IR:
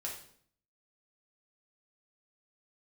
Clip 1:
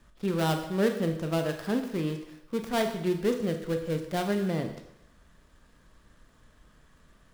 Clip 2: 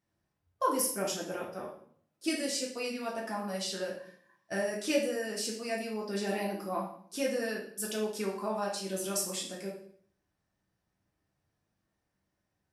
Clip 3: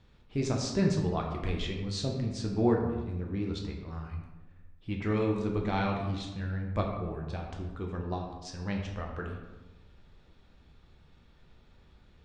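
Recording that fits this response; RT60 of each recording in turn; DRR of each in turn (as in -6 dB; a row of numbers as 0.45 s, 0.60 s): 2; 0.75 s, 0.60 s, 1.1 s; 5.0 dB, -3.0 dB, 0.0 dB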